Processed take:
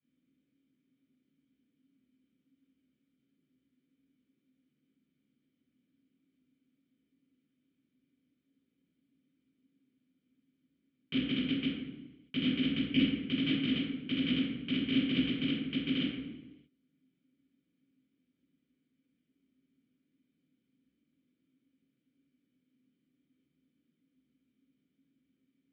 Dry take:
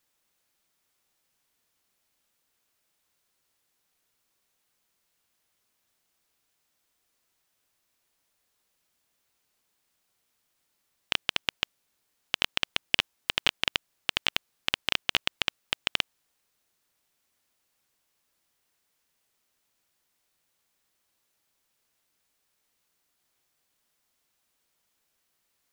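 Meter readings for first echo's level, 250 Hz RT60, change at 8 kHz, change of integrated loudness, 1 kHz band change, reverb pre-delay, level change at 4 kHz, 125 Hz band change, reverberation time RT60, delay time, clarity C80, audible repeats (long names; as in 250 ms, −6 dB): no echo audible, 1.4 s, below −30 dB, −3.0 dB, −17.5 dB, 3 ms, −8.5 dB, +9.5 dB, 1.1 s, no echo audible, 2.0 dB, no echo audible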